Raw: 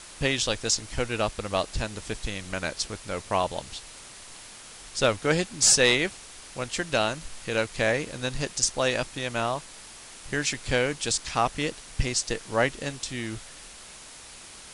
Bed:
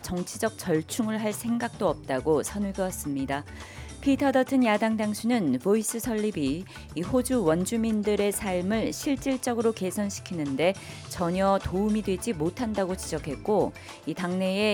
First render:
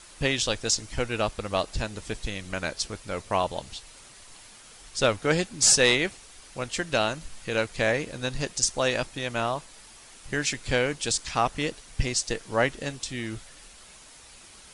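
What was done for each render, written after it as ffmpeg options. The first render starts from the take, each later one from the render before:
-af "afftdn=nr=6:nf=-46"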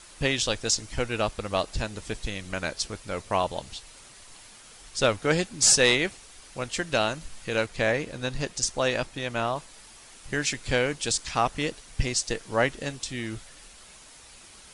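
-filter_complex "[0:a]asettb=1/sr,asplit=3[a][b][c];[a]atrim=end=7.664[d];[b]atrim=start=7.66:end=9.56,asetpts=PTS-STARTPTS,afade=t=in:d=0.004:c=qsin,afade=t=out:st=1.896:d=0.004:c=qsin,highshelf=f=5.3k:g=-4.5[e];[c]atrim=start=9.556[f];[d][e]acrossfade=d=0.004:c1=hsin:c2=qsin[g];[g][f]acrossfade=d=0.004:c1=qsin:c2=hsin"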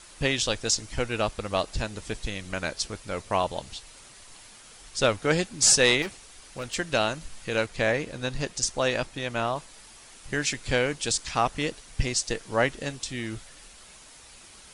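-filter_complex "[0:a]asettb=1/sr,asplit=3[a][b][c];[a]atrim=end=6.024[d];[b]atrim=start=6.02:end=6.74,asetpts=PTS-STARTPTS,afade=t=in:d=0.004:c=qsin,afade=t=out:st=0.716:d=0.004:c=qsin,asoftclip=type=hard:threshold=-29dB[e];[c]atrim=start=6.736[f];[d][e]acrossfade=d=0.004:c1=hsin:c2=qsin[g];[g][f]acrossfade=d=0.004:c1=qsin:c2=hsin"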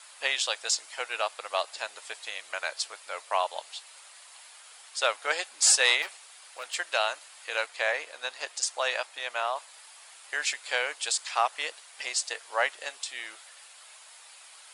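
-af "highpass=f=650:w=0.5412,highpass=f=650:w=1.3066,equalizer=f=5.9k:w=4.6:g=-6"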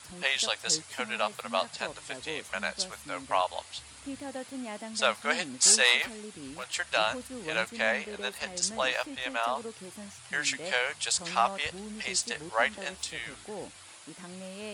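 -filter_complex "[1:a]volume=-16.5dB[a];[0:a][a]amix=inputs=2:normalize=0"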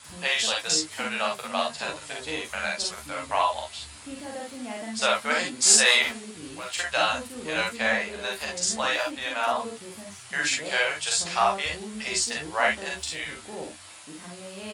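-filter_complex "[0:a]asplit=2[a][b];[b]adelay=13,volume=-6.5dB[c];[a][c]amix=inputs=2:normalize=0,aecho=1:1:41|51|67:0.668|0.631|0.447"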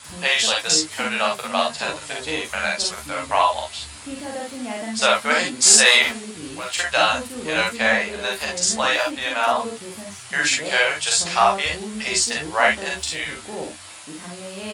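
-af "volume=6dB,alimiter=limit=-1dB:level=0:latency=1"

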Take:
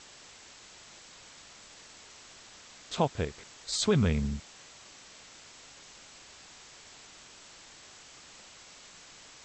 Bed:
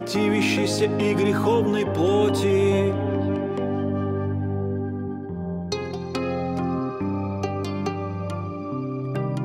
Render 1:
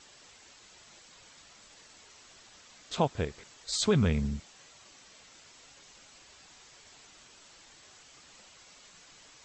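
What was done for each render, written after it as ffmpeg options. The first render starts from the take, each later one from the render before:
-af "afftdn=nr=6:nf=-53"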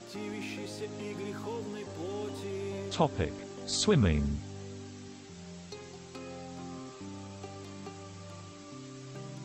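-filter_complex "[1:a]volume=-18dB[a];[0:a][a]amix=inputs=2:normalize=0"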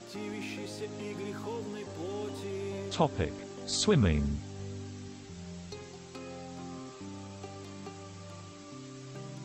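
-filter_complex "[0:a]asettb=1/sr,asplit=3[a][b][c];[a]atrim=end=4.594[d];[b]atrim=start=4.59:end=5.84,asetpts=PTS-STARTPTS,afade=t=in:d=0.004:c=qsin,afade=t=out:st=1.246:d=0.004:c=qsin,lowshelf=f=90:g=11.5[e];[c]atrim=start=5.836[f];[d][e]acrossfade=d=0.004:c1=hsin:c2=qsin[g];[g][f]acrossfade=d=0.004:c1=qsin:c2=hsin"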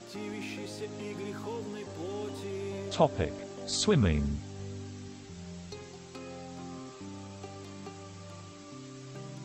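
-filter_complex "[0:a]asettb=1/sr,asplit=3[a][b][c];[a]atrim=end=2.874[d];[b]atrim=start=2.87:end=3.69,asetpts=PTS-STARTPTS,afade=t=in:d=0.004:c=qsin,afade=t=out:st=0.816:d=0.004:c=qsin,equalizer=f=630:t=o:w=0.29:g=8[e];[c]atrim=start=3.686[f];[d][e]acrossfade=d=0.004:c1=hsin:c2=qsin[g];[g][f]acrossfade=d=0.004:c1=qsin:c2=hsin"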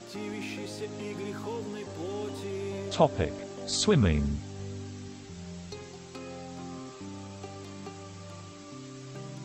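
-af "volume=2dB"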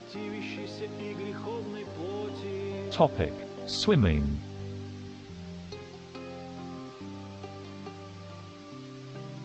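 -af "lowpass=f=5.3k:w=0.5412,lowpass=f=5.3k:w=1.3066"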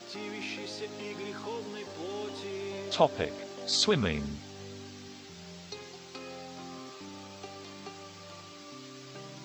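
-af "aemphasis=mode=production:type=bsi"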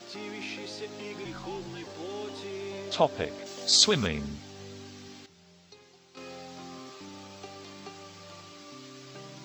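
-filter_complex "[0:a]asettb=1/sr,asplit=3[a][b][c];[a]atrim=end=1.254[d];[b]atrim=start=1.25:end=1.84,asetpts=PTS-STARTPTS,afade=t=in:d=0.004:c=qsin,afade=t=out:st=0.586:d=0.004:c=qsin,afreqshift=-73[e];[c]atrim=start=1.836[f];[d][e]acrossfade=d=0.004:c1=hsin:c2=qsin[g];[g][f]acrossfade=d=0.004:c1=qsin:c2=hsin,asettb=1/sr,asplit=3[h][i][j];[h]atrim=end=3.464[k];[i]atrim=start=3.46:end=4.07,asetpts=PTS-STARTPTS,afade=t=in:d=0.004:c=qsin,afade=t=out:st=0.606:d=0.004:c=qsin,highshelf=f=3.9k:g=12[l];[j]atrim=start=4.066[m];[k][l]acrossfade=d=0.004:c1=hsin:c2=qsin[n];[n][m]acrossfade=d=0.004:c1=qsin:c2=hsin,asplit=3[o][p][q];[o]atrim=end=5.262[r];[p]atrim=start=5.258:end=6.172,asetpts=PTS-STARTPTS,volume=-10.5dB[s];[q]atrim=start=6.168[t];[r][s]acrossfade=d=0.004:c1=hsin:c2=hsin[u];[u][t]acrossfade=d=0.004:c1=hsin:c2=hsin"

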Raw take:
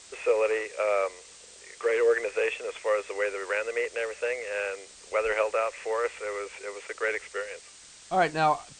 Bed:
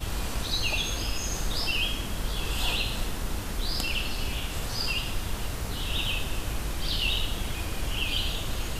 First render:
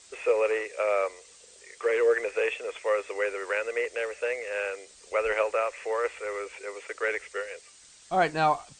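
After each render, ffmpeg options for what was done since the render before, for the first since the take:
-af "afftdn=nr=6:nf=-51"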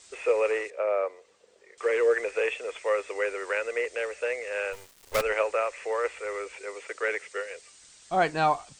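-filter_complex "[0:a]asettb=1/sr,asplit=3[a][b][c];[a]atrim=end=0.704[d];[b]atrim=start=0.7:end=1.78,asetpts=PTS-STARTPTS,afade=t=in:d=0.004:c=qsin,afade=t=out:st=1.076:d=0.004:c=qsin,bandpass=f=480:t=q:w=0.5[e];[c]atrim=start=1.776[f];[d][e]acrossfade=d=0.004:c1=hsin:c2=qsin[g];[g][f]acrossfade=d=0.004:c1=qsin:c2=hsin,asplit=3[h][i][j];[h]afade=t=out:st=4.72:d=0.02[k];[i]acrusher=bits=5:dc=4:mix=0:aa=0.000001,afade=t=in:st=4.72:d=0.02,afade=t=out:st=5.21:d=0.02[l];[j]afade=t=in:st=5.21:d=0.02[m];[k][l][m]amix=inputs=3:normalize=0,asettb=1/sr,asplit=3[n][o][p];[n]atrim=end=6.914[q];[o]atrim=start=6.91:end=7.51,asetpts=PTS-STARTPTS,afade=t=in:d=0.004:c=qsin,afade=t=out:st=0.596:d=0.004:c=qsin,highpass=f=96:w=0.5412,highpass=f=96:w=1.3066[r];[p]atrim=start=7.506[s];[q][r]acrossfade=d=0.004:c1=hsin:c2=qsin[t];[t][s]acrossfade=d=0.004:c1=qsin:c2=hsin"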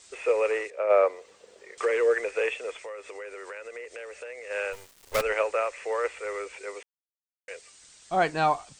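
-filter_complex "[0:a]asplit=3[a][b][c];[a]afade=t=out:st=0.89:d=0.02[d];[b]acontrast=85,afade=t=in:st=0.89:d=0.02,afade=t=out:st=1.84:d=0.02[e];[c]afade=t=in:st=1.84:d=0.02[f];[d][e][f]amix=inputs=3:normalize=0,asplit=3[g][h][i];[g]afade=t=out:st=2.74:d=0.02[j];[h]acompressor=threshold=-38dB:ratio=4:attack=3.2:release=140:knee=1:detection=peak,afade=t=in:st=2.74:d=0.02,afade=t=out:st=4.49:d=0.02[k];[i]afade=t=in:st=4.49:d=0.02[l];[j][k][l]amix=inputs=3:normalize=0,asplit=3[m][n][o];[m]atrim=end=6.83,asetpts=PTS-STARTPTS,afade=t=out:st=6.826:d=0.004:c=hsin[p];[n]atrim=start=6.83:end=7.48,asetpts=PTS-STARTPTS,volume=0[q];[o]atrim=start=7.48,asetpts=PTS-STARTPTS,afade=t=in:d=0.004:c=hsin[r];[p][q][r]concat=n=3:v=0:a=1"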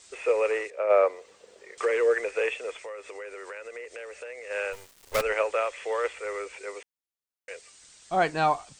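-filter_complex "[0:a]asettb=1/sr,asplit=3[a][b][c];[a]atrim=end=5.504[d];[b]atrim=start=5.5:end=6.13,asetpts=PTS-STARTPTS,afade=t=in:d=0.004:c=qsin,afade=t=out:st=0.626:d=0.004:c=qsin,equalizer=f=3.3k:t=o:w=0.23:g=10.5[e];[c]atrim=start=6.126[f];[d][e]acrossfade=d=0.004:c1=hsin:c2=qsin[g];[g][f]acrossfade=d=0.004:c1=qsin:c2=hsin"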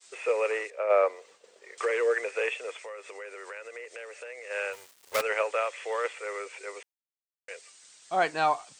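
-af "highpass=f=480:p=1,agate=range=-33dB:threshold=-52dB:ratio=3:detection=peak"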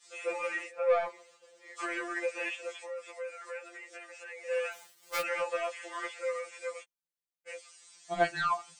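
-af "asoftclip=type=tanh:threshold=-15.5dB,afftfilt=real='re*2.83*eq(mod(b,8),0)':imag='im*2.83*eq(mod(b,8),0)':win_size=2048:overlap=0.75"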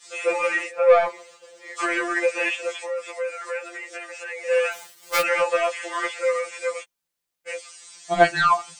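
-af "volume=11.5dB"

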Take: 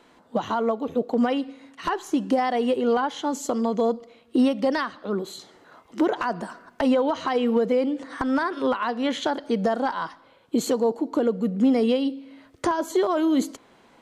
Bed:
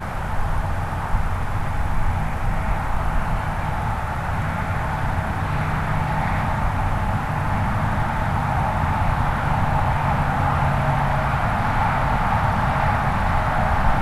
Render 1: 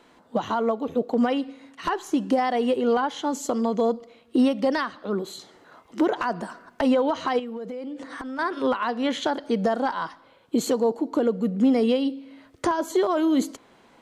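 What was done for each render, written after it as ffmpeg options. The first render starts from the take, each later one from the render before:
-filter_complex "[0:a]asettb=1/sr,asplit=3[a][b][c];[a]atrim=end=7.394[d];[b]atrim=start=7.39:end=8.39,asetpts=PTS-STARTPTS,afade=t=in:d=0.004:c=qsin,afade=t=out:st=0.996:d=0.004:c=qsin,acompressor=threshold=-31dB:ratio=8:attack=3.2:release=140:knee=1:detection=peak[e];[c]atrim=start=8.386[f];[d][e]acrossfade=d=0.004:c1=hsin:c2=qsin[g];[g][f]acrossfade=d=0.004:c1=qsin:c2=hsin"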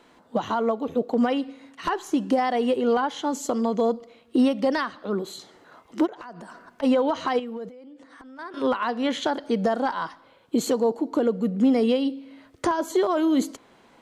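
-filter_complex "[0:a]asplit=3[a][b][c];[a]afade=t=out:st=6.05:d=0.02[d];[b]acompressor=threshold=-38dB:ratio=5:attack=3.2:release=140:knee=1:detection=peak,afade=t=in:st=6.05:d=0.02,afade=t=out:st=6.82:d=0.02[e];[c]afade=t=in:st=6.82:d=0.02[f];[d][e][f]amix=inputs=3:normalize=0,asplit=3[g][h][i];[g]atrim=end=7.692[j];[h]atrim=start=7.688:end=8.542,asetpts=PTS-STARTPTS,volume=-11.5dB[k];[i]atrim=start=8.538[l];[j][k]acrossfade=d=0.004:c1=hsin:c2=hsin[m];[m][l]acrossfade=d=0.004:c1=hsin:c2=hsin"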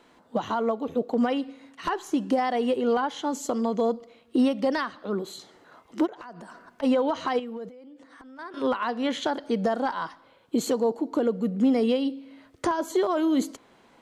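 -af "volume=-2dB"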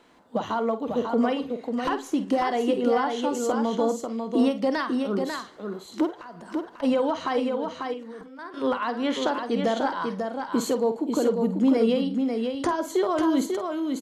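-filter_complex "[0:a]asplit=2[a][b];[b]adelay=49,volume=-11.5dB[c];[a][c]amix=inputs=2:normalize=0,aecho=1:1:544:0.562"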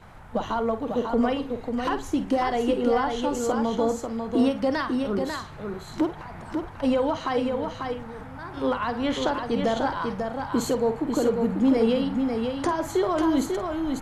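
-filter_complex "[1:a]volume=-20.5dB[a];[0:a][a]amix=inputs=2:normalize=0"

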